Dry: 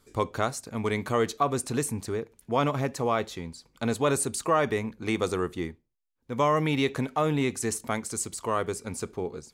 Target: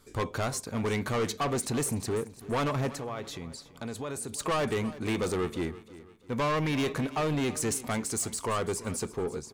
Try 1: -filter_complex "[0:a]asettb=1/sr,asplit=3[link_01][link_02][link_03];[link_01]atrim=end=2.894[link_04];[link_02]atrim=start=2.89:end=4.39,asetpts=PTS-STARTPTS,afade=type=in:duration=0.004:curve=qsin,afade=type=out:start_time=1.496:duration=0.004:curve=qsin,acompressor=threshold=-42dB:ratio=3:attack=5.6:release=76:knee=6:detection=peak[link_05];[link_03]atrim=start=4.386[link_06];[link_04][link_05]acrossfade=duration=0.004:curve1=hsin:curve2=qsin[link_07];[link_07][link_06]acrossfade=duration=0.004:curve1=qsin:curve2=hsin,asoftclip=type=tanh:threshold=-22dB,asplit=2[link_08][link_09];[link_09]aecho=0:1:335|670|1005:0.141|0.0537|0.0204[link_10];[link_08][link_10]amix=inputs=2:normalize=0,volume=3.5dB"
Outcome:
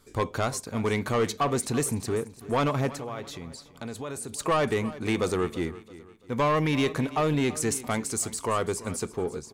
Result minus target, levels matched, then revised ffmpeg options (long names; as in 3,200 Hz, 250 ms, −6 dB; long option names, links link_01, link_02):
soft clipping: distortion −5 dB
-filter_complex "[0:a]asettb=1/sr,asplit=3[link_01][link_02][link_03];[link_01]atrim=end=2.894[link_04];[link_02]atrim=start=2.89:end=4.39,asetpts=PTS-STARTPTS,afade=type=in:duration=0.004:curve=qsin,afade=type=out:start_time=1.496:duration=0.004:curve=qsin,acompressor=threshold=-42dB:ratio=3:attack=5.6:release=76:knee=6:detection=peak[link_05];[link_03]atrim=start=4.386[link_06];[link_04][link_05]acrossfade=duration=0.004:curve1=hsin:curve2=qsin[link_07];[link_07][link_06]acrossfade=duration=0.004:curve1=qsin:curve2=hsin,asoftclip=type=tanh:threshold=-28.5dB,asplit=2[link_08][link_09];[link_09]aecho=0:1:335|670|1005:0.141|0.0537|0.0204[link_10];[link_08][link_10]amix=inputs=2:normalize=0,volume=3.5dB"